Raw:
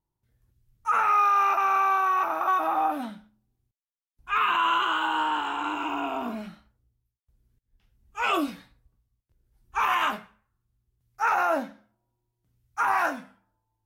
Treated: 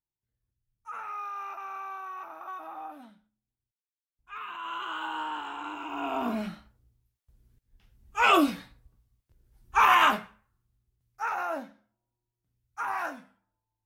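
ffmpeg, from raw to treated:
-af "volume=4.5dB,afade=t=in:st=4.57:d=0.47:silence=0.398107,afade=t=in:st=5.89:d=0.57:silence=0.237137,afade=t=out:st=10.1:d=1.2:silence=0.237137"

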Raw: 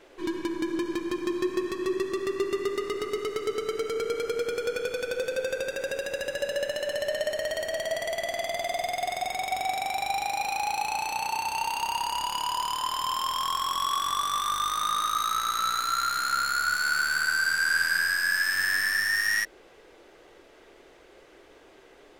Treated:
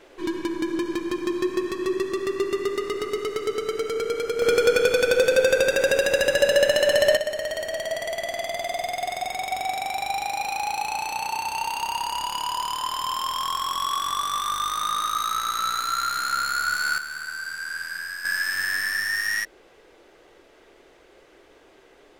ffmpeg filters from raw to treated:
-af "asetnsamples=n=441:p=0,asendcmd='4.42 volume volume 11dB;7.17 volume volume 1.5dB;16.98 volume volume -7.5dB;18.25 volume volume 0dB',volume=3dB"

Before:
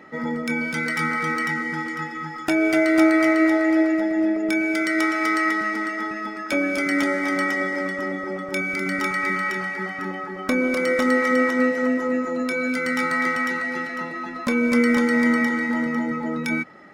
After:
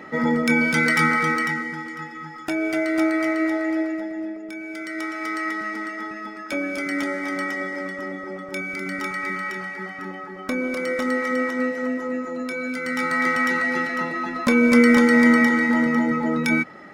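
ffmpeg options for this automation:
-af "volume=23dB,afade=t=out:st=0.92:d=0.85:silence=0.298538,afade=t=out:st=3.68:d=0.84:silence=0.375837,afade=t=in:st=4.52:d=1.22:silence=0.354813,afade=t=in:st=12.8:d=0.84:silence=0.398107"

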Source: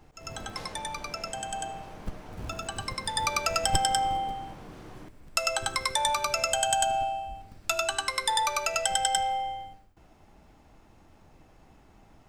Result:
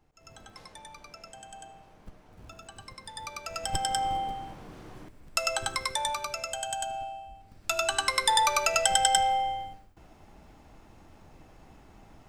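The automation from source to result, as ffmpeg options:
-af "volume=10dB,afade=t=in:st=3.44:d=0.71:silence=0.281838,afade=t=out:st=5.63:d=0.79:silence=0.446684,afade=t=in:st=7.39:d=0.69:silence=0.281838"

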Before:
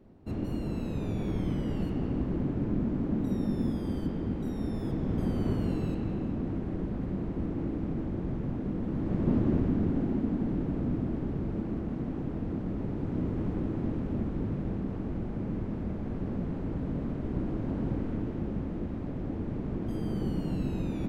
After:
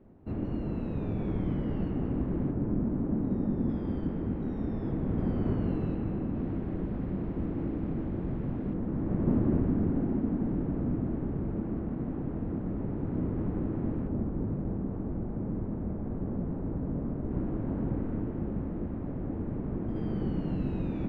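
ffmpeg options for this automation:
-af "asetnsamples=n=441:p=0,asendcmd='2.51 lowpass f 1400;3.69 lowpass f 2100;6.35 lowpass f 3100;8.74 lowpass f 1800;14.08 lowpass f 1200;17.31 lowpass f 1700;19.96 lowpass f 2600',lowpass=2.1k"

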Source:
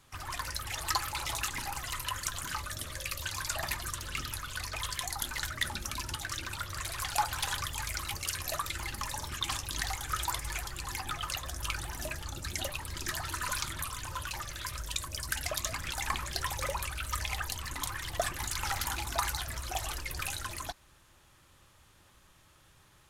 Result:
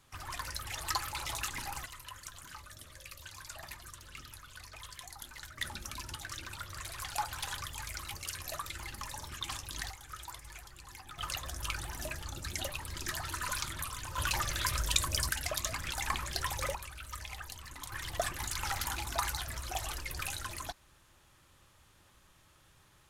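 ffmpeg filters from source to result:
-af "asetnsamples=n=441:p=0,asendcmd='1.86 volume volume -12dB;5.58 volume volume -5.5dB;9.9 volume volume -12.5dB;11.18 volume volume -2dB;14.18 volume volume 6dB;15.29 volume volume -1dB;16.75 volume volume -9dB;17.92 volume volume -2dB',volume=-3dB"

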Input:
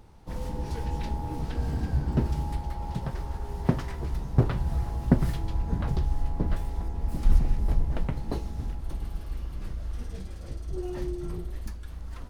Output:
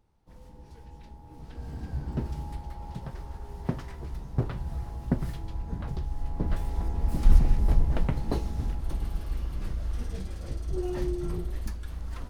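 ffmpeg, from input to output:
-af "volume=2.5dB,afade=t=in:st=1.25:d=0.8:silence=0.298538,afade=t=in:st=6.13:d=0.77:silence=0.375837"

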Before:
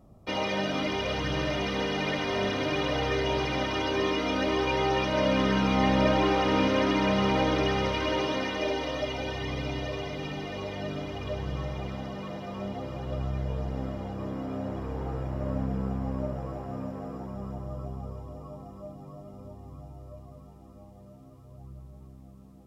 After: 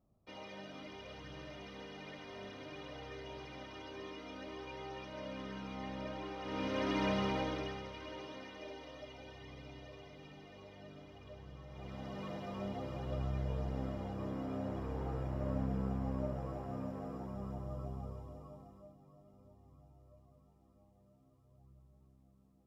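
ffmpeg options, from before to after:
-af "volume=5dB,afade=t=in:st=6.39:d=0.66:silence=0.251189,afade=t=out:st=7.05:d=0.79:silence=0.281838,afade=t=in:st=11.67:d=0.57:silence=0.223872,afade=t=out:st=18:d=0.98:silence=0.281838"

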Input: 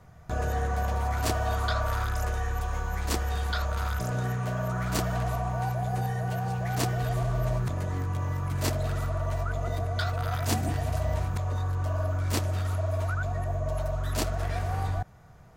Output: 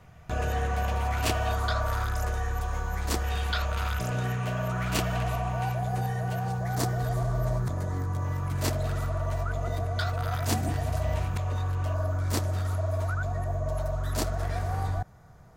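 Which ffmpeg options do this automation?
-af "asetnsamples=n=441:p=0,asendcmd='1.52 equalizer g -1;3.24 equalizer g 8.5;5.79 equalizer g 1;6.52 equalizer g -9;8.25 equalizer g -1;11.03 equalizer g 5.5;11.94 equalizer g -5',equalizer=f=2.7k:t=o:w=0.67:g=8.5"

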